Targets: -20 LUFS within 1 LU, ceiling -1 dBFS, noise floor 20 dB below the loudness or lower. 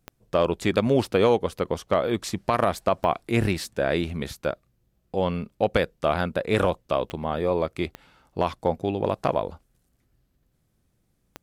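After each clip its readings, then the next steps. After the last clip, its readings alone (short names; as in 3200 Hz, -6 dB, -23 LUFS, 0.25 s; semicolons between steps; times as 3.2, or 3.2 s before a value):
clicks 5; loudness -25.5 LUFS; peak -9.0 dBFS; loudness target -20.0 LUFS
-> de-click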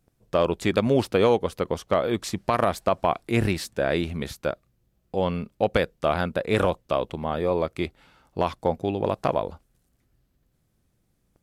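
clicks 0; loudness -25.5 LUFS; peak -9.0 dBFS; loudness target -20.0 LUFS
-> gain +5.5 dB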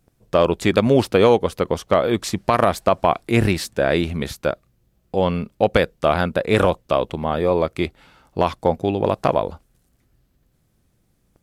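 loudness -20.0 LUFS; peak -3.5 dBFS; noise floor -65 dBFS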